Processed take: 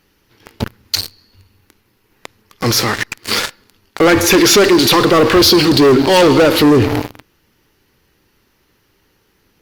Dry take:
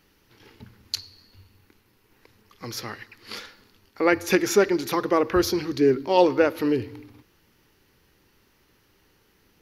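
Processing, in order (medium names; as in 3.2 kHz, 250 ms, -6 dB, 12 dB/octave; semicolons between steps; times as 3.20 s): 4.35–6.63 s: high-order bell 3.7 kHz +8 dB 1 oct; waveshaping leveller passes 5; loudness maximiser +18 dB; trim -4.5 dB; Opus 64 kbps 48 kHz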